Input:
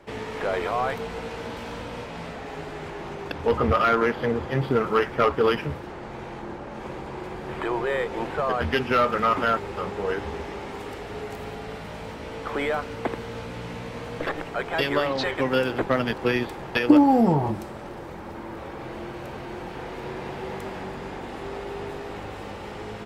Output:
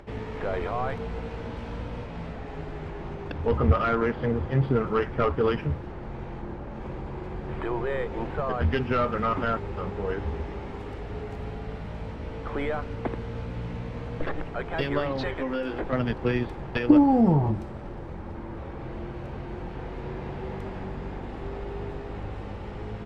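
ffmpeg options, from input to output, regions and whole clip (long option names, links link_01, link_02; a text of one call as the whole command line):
ffmpeg -i in.wav -filter_complex "[0:a]asettb=1/sr,asplit=3[link_01][link_02][link_03];[link_01]atrim=end=15.344[link_04];[link_02]atrim=start=15.34:end=15.93,asetpts=PTS-STARTPTS,afade=type=in:duration=0.004:curve=qsin,afade=type=out:start_time=0.586:duration=0.004:curve=qsin,equalizer=frequency=120:width=1.7:gain=-12,acompressor=threshold=-25dB:ratio=4:attack=3.2:release=140:knee=1:detection=peak,asplit=2[link_05][link_06];[link_06]adelay=19,volume=-3dB[link_07];[link_05][link_07]amix=inputs=2:normalize=0,atrim=end_sample=26019[link_08];[link_03]atrim=start=15.926[link_09];[link_04][link_08]acrossfade=duration=0.004:curve1=hsin:curve2=qsin[link_10];[link_10][link_09]acrossfade=duration=0.004:curve1=qsin:curve2=hsin,aemphasis=mode=reproduction:type=bsi,acompressor=mode=upward:threshold=-39dB:ratio=2.5,volume=-5dB" out.wav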